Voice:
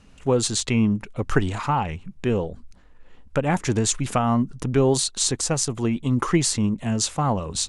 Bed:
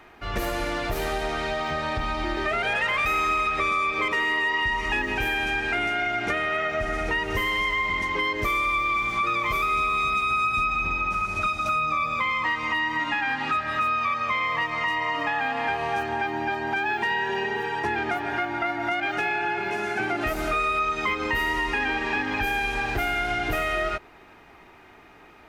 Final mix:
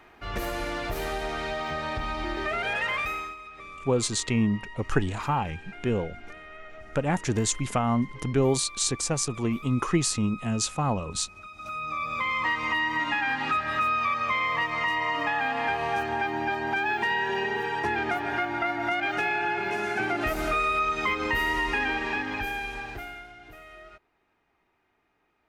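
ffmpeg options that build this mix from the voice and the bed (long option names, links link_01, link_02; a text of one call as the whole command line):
ffmpeg -i stem1.wav -i stem2.wav -filter_complex "[0:a]adelay=3600,volume=-4dB[link_01];[1:a]volume=15dB,afade=type=out:start_time=2.93:duration=0.43:silence=0.158489,afade=type=in:start_time=11.5:duration=0.97:silence=0.11885,afade=type=out:start_time=21.76:duration=1.56:silence=0.0944061[link_02];[link_01][link_02]amix=inputs=2:normalize=0" out.wav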